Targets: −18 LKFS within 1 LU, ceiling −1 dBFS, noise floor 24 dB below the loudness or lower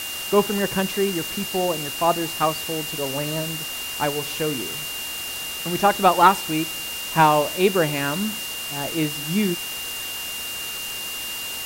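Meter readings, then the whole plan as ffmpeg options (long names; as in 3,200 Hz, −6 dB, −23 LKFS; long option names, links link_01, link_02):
interfering tone 2,800 Hz; level of the tone −31 dBFS; background noise floor −31 dBFS; target noise floor −47 dBFS; integrated loudness −23.0 LKFS; sample peak −2.0 dBFS; target loudness −18.0 LKFS
→ -af "bandreject=frequency=2800:width=30"
-af "afftdn=noise_reduction=16:noise_floor=-31"
-af "volume=5dB,alimiter=limit=-1dB:level=0:latency=1"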